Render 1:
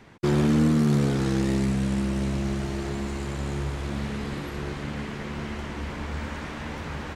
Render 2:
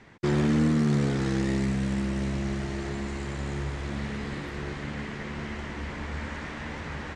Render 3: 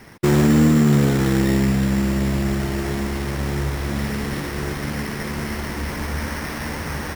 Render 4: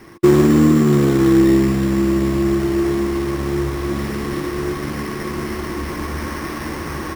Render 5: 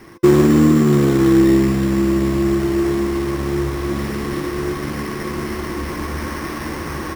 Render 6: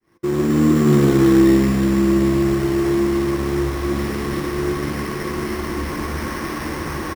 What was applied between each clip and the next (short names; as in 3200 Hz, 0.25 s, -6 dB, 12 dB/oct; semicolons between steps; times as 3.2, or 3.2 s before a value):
LPF 8800 Hz 24 dB/oct; bell 1900 Hz +5 dB 0.41 oct; gain -2.5 dB
sample-and-hold 6×; gain +8.5 dB
small resonant body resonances 340/1100 Hz, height 13 dB, ringing for 55 ms; gain -1 dB
resonator 510 Hz, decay 0.4 s, mix 40%; gain +4.5 dB
opening faded in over 0.90 s; echo 0.154 s -12.5 dB